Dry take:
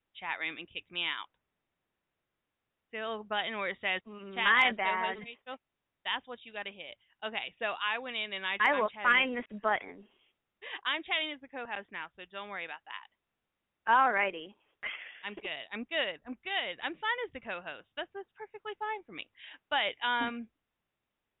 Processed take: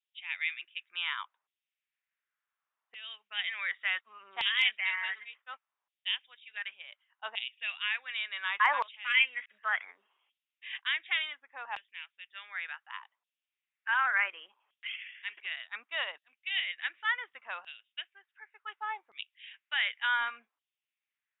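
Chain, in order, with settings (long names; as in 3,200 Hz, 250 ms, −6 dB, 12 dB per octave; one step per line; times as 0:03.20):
auto-filter high-pass saw down 0.68 Hz 920–3,300 Hz
one half of a high-frequency compander decoder only
level −3 dB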